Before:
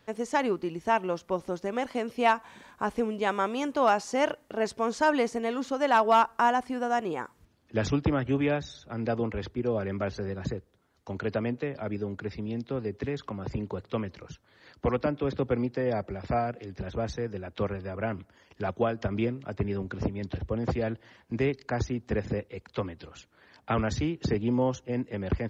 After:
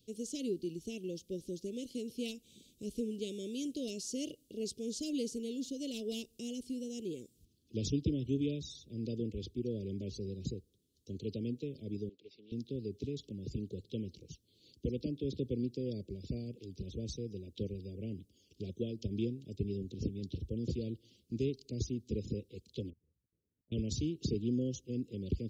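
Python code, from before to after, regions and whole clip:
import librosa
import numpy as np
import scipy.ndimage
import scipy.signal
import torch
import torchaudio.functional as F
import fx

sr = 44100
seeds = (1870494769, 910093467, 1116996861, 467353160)

y = fx.chain(x, sr, fx.bandpass_edges(low_hz=710.0, high_hz=3000.0),
    fx.doppler_dist(depth_ms=0.24), at=(12.09, 12.52))
y = fx.chain(y, sr, fx.peak_eq(hz=340.0, db=-10.0, octaves=1.9),
    fx.level_steps(step_db=23),
    fx.brickwall_lowpass(high_hz=1100.0), at=(22.9, 23.72))
y = scipy.signal.sosfilt(scipy.signal.cheby2(4, 50, [760.0, 1800.0], 'bandstop', fs=sr, output='sos'), y)
y = fx.high_shelf(y, sr, hz=4600.0, db=8.0)
y = y * 10.0 ** (-6.0 / 20.0)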